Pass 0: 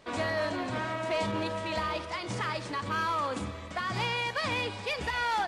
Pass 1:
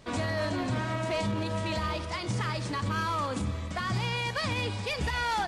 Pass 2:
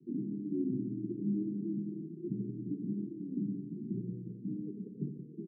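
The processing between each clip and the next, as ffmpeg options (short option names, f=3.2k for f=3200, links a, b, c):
-af "bass=f=250:g=10,treble=f=4k:g=5,alimiter=limit=-21.5dB:level=0:latency=1:release=79"
-af "asuperpass=centerf=230:order=20:qfactor=0.86,aecho=1:1:84.55|174.9:0.355|0.316"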